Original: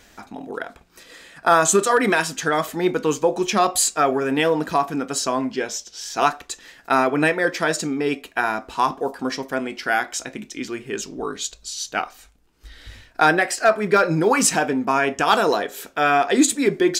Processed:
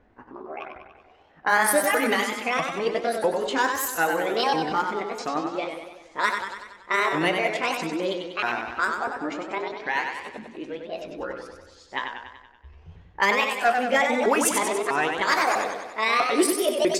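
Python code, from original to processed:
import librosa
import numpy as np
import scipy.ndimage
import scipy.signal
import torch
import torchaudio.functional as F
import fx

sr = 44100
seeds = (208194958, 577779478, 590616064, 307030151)

y = fx.pitch_ramps(x, sr, semitones=9.5, every_ms=648)
y = fx.env_lowpass(y, sr, base_hz=1000.0, full_db=-15.0)
y = fx.echo_warbled(y, sr, ms=95, feedback_pct=58, rate_hz=2.8, cents=101, wet_db=-5.5)
y = F.gain(torch.from_numpy(y), -4.5).numpy()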